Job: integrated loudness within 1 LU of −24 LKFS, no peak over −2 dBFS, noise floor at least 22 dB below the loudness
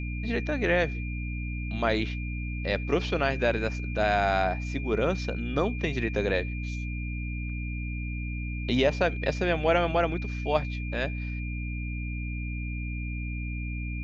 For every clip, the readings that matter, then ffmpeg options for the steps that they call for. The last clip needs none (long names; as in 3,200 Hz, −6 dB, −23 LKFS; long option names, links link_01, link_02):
mains hum 60 Hz; hum harmonics up to 300 Hz; level of the hum −30 dBFS; interfering tone 2,400 Hz; level of the tone −40 dBFS; integrated loudness −29.0 LKFS; sample peak −10.0 dBFS; target loudness −24.0 LKFS
→ -af "bandreject=frequency=60:width_type=h:width=6,bandreject=frequency=120:width_type=h:width=6,bandreject=frequency=180:width_type=h:width=6,bandreject=frequency=240:width_type=h:width=6,bandreject=frequency=300:width_type=h:width=6"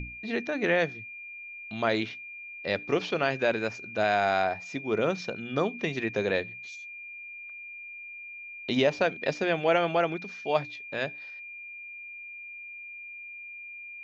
mains hum none found; interfering tone 2,400 Hz; level of the tone −40 dBFS
→ -af "bandreject=frequency=2400:width=30"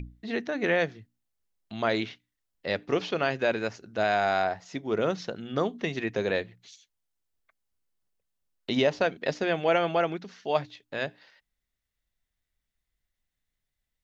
interfering tone none found; integrated loudness −29.0 LKFS; sample peak −10.0 dBFS; target loudness −24.0 LKFS
→ -af "volume=5dB"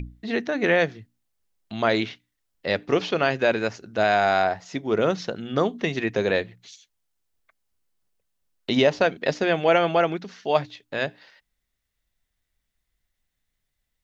integrated loudness −24.0 LKFS; sample peak −5.0 dBFS; background noise floor −79 dBFS